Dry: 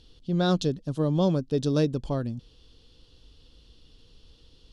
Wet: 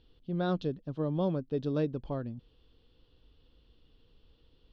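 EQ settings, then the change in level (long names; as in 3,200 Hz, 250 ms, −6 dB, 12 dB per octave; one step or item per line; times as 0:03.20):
high-frequency loss of the air 250 metres
bass and treble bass −3 dB, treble −9 dB
high-shelf EQ 4,000 Hz +5 dB
−5.0 dB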